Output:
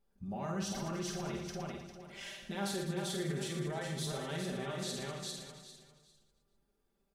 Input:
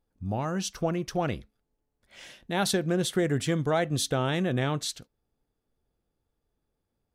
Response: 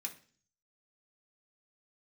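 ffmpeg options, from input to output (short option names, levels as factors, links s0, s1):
-filter_complex "[0:a]acompressor=threshold=0.0178:ratio=2.5,asplit=2[s0][s1];[s1]aecho=0:1:400|800|1200:0.531|0.127|0.0306[s2];[s0][s2]amix=inputs=2:normalize=0,flanger=delay=9.3:depth=4.8:regen=69:speed=0.41:shape=triangular,alimiter=level_in=3.55:limit=0.0631:level=0:latency=1:release=27,volume=0.282,bandreject=f=60:t=h:w=6,bandreject=f=120:t=h:w=6,bandreject=f=180:t=h:w=6,aecho=1:1:5.1:0.85,asplit=2[s3][s4];[s4]aecho=0:1:50|115|199.5|309.4|452.2:0.631|0.398|0.251|0.158|0.1[s5];[s3][s5]amix=inputs=2:normalize=0,volume=1.12"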